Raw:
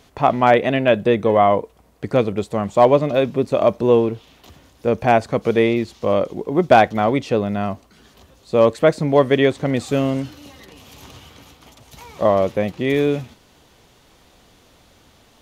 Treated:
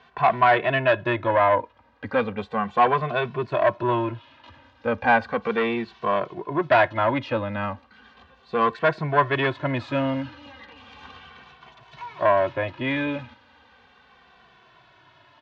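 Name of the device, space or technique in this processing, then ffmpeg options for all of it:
barber-pole flanger into a guitar amplifier: -filter_complex "[0:a]asplit=2[link_01][link_02];[link_02]adelay=2.2,afreqshift=-0.35[link_03];[link_01][link_03]amix=inputs=2:normalize=1,asoftclip=type=tanh:threshold=-13dB,highpass=98,equalizer=frequency=180:width_type=q:width=4:gain=-9,equalizer=frequency=300:width_type=q:width=4:gain=-4,equalizer=frequency=430:width_type=q:width=4:gain=-6,equalizer=frequency=1000:width_type=q:width=4:gain=9,equalizer=frequency=1600:width_type=q:width=4:gain=10,equalizer=frequency=2600:width_type=q:width=4:gain=3,lowpass=frequency=4000:width=0.5412,lowpass=frequency=4000:width=1.3066"

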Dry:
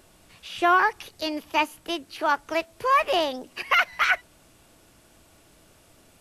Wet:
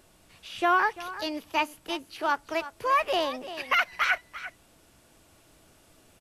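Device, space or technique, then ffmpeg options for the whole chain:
ducked delay: -filter_complex "[0:a]asplit=3[link_01][link_02][link_03];[link_02]adelay=343,volume=-5.5dB[link_04];[link_03]apad=whole_len=288699[link_05];[link_04][link_05]sidechaincompress=threshold=-26dB:ratio=8:attack=8.2:release=1380[link_06];[link_01][link_06]amix=inputs=2:normalize=0,volume=-3.5dB"

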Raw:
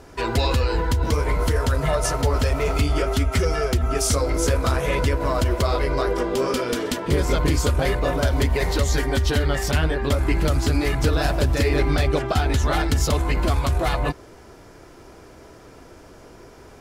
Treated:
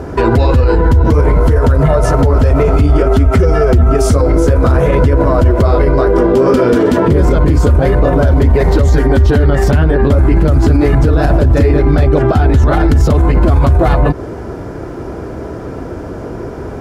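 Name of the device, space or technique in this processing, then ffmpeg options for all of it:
mastering chain: -af "highpass=48,equalizer=frequency=1500:width_type=o:width=0.55:gain=4,acompressor=threshold=-23dB:ratio=6,tiltshelf=frequency=1200:gain=9.5,alimiter=level_in=15.5dB:limit=-1dB:release=50:level=0:latency=1,volume=-1dB"

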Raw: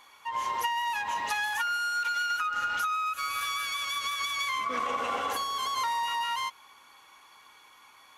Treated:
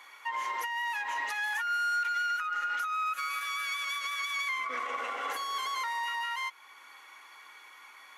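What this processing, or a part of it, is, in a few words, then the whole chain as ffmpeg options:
laptop speaker: -af "highpass=frequency=280:width=0.5412,highpass=frequency=280:width=1.3066,equalizer=frequency=1400:width_type=o:width=0.28:gain=4.5,equalizer=frequency=2000:width_type=o:width=0.42:gain=10,alimiter=level_in=1dB:limit=-24dB:level=0:latency=1:release=387,volume=-1dB"

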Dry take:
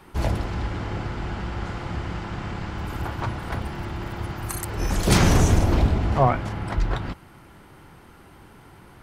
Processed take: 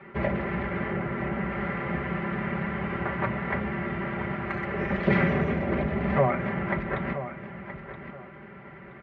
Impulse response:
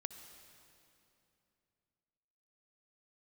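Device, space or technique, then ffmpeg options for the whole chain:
bass amplifier: -filter_complex "[0:a]asettb=1/sr,asplit=3[link_01][link_02][link_03];[link_01]atrim=end=0.914[link_04];[link_02]atrim=start=0.91:end=1.51,asetpts=PTS-STARTPTS,afade=type=in:duration=0.004:curve=qsin,afade=type=out:start_time=0.596:duration=0.004:curve=qsin,equalizer=frequency=6600:width=0.42:gain=-5.5[link_05];[link_03]atrim=start=1.506[link_06];[link_04][link_05]acrossfade=duration=0.004:curve1=hsin:curve2=qsin[link_07];[link_07][link_06]acrossfade=duration=0.004:curve1=qsin:curve2=hsin,acompressor=threshold=-21dB:ratio=4,highpass=frequency=80:width=0.5412,highpass=frequency=80:width=1.3066,equalizer=frequency=540:width_type=q:width=4:gain=5,equalizer=frequency=870:width_type=q:width=4:gain=-6,equalizer=frequency=2000:width_type=q:width=4:gain=9,lowpass=frequency=2400:width=0.5412,lowpass=frequency=2400:width=1.3066,aecho=1:1:5.1:0.81,aecho=1:1:974|1948|2922:0.266|0.0639|0.0153"

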